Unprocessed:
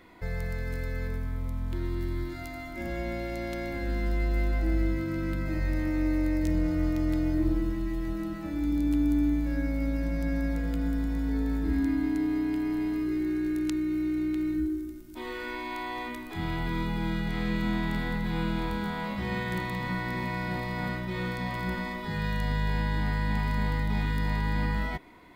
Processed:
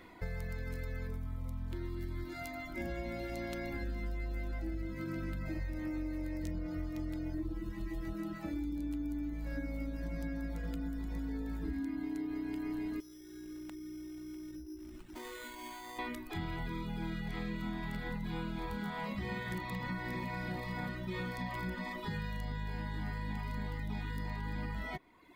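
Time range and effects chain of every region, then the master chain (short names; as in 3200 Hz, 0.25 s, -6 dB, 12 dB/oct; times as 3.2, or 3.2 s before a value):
13–15.99 compressor 10:1, threshold -39 dBFS + careless resampling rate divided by 8×, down none, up hold
whole clip: reverb removal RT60 1.1 s; compressor, threshold -35 dBFS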